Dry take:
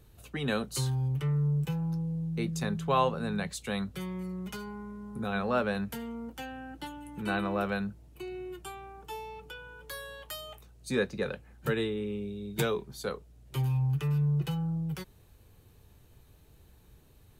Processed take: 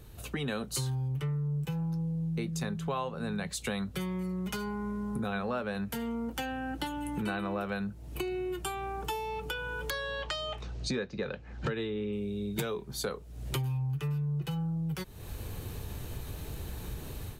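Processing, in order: level rider gain up to 13 dB; 9.90–12.13 s: low-pass 5.8 kHz 24 dB/octave; compression 6:1, threshold -40 dBFS, peak gain reduction 26.5 dB; trim +6.5 dB

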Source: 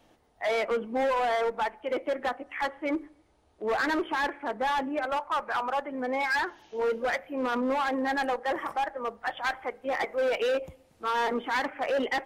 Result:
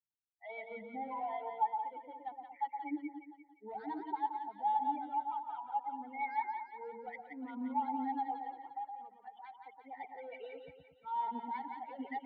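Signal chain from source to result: expander on every frequency bin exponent 2; 8.43–9.52 s: compression, threshold -37 dBFS, peak gain reduction 9.5 dB; vowel filter u; distance through air 350 m; static phaser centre 1.7 kHz, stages 8; two-band feedback delay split 930 Hz, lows 117 ms, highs 174 ms, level -4.5 dB; trim +10.5 dB

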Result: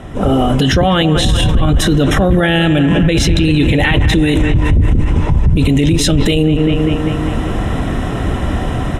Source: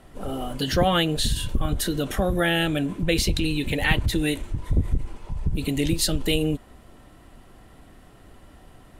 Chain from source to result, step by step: high-pass 79 Hz 6 dB/octave; bass shelf 190 Hz +9 dB; level rider gain up to 12.5 dB; Butterworth band-stop 4.5 kHz, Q 5.3; distance through air 63 m; on a send: bucket-brigade echo 196 ms, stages 4096, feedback 62%, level -13 dB; on the sum: loudness maximiser +21 dB; trim -3.5 dB

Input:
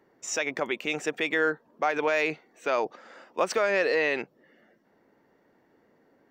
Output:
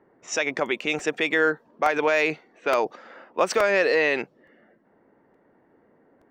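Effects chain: level-controlled noise filter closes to 1.7 kHz, open at -25.5 dBFS; crackling interface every 0.87 s, samples 128, repeat, from 0.99 s; trim +4 dB

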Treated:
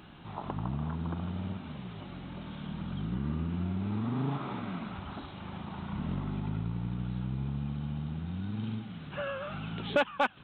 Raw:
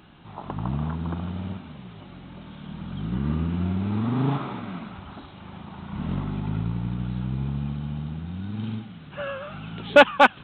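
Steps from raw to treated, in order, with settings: compression 2:1, threshold -35 dBFS, peak gain reduction 14.5 dB

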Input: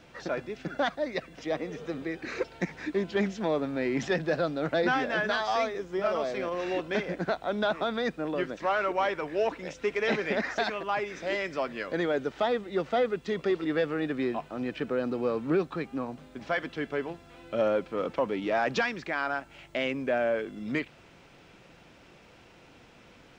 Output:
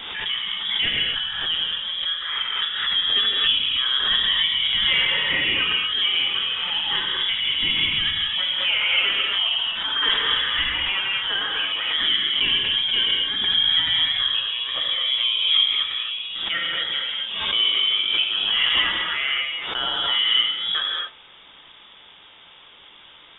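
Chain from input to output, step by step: frequency inversion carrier 3.6 kHz; gated-style reverb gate 290 ms flat, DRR -2.5 dB; swell ahead of each attack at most 37 dB/s; trim +2.5 dB

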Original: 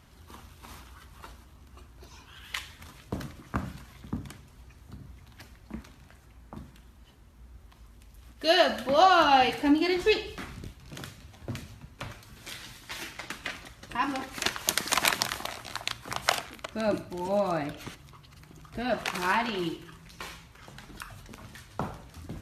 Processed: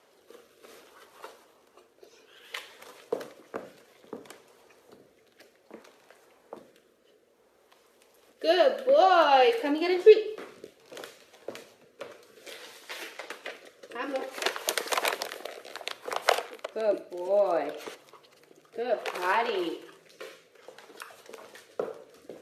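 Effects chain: resonant high-pass 470 Hz, resonance Q 4.9; dynamic bell 6.6 kHz, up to -4 dB, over -47 dBFS, Q 0.88; rotary cabinet horn 0.6 Hz

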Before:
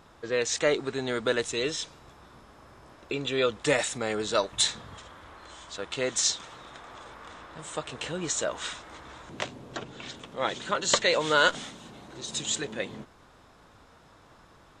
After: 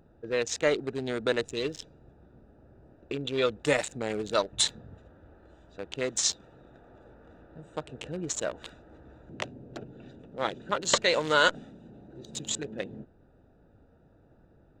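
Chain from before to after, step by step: local Wiener filter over 41 samples

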